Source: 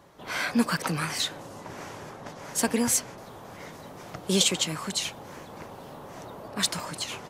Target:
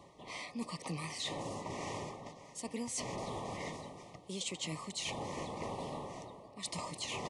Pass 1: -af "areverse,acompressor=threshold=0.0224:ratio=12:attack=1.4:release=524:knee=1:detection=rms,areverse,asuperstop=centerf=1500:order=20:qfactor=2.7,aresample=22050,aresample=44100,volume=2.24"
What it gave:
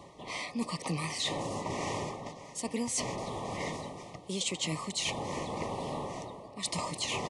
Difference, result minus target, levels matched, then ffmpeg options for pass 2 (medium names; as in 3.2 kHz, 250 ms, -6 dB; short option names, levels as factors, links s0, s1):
compression: peak gain reduction -6.5 dB
-af "areverse,acompressor=threshold=0.01:ratio=12:attack=1.4:release=524:knee=1:detection=rms,areverse,asuperstop=centerf=1500:order=20:qfactor=2.7,aresample=22050,aresample=44100,volume=2.24"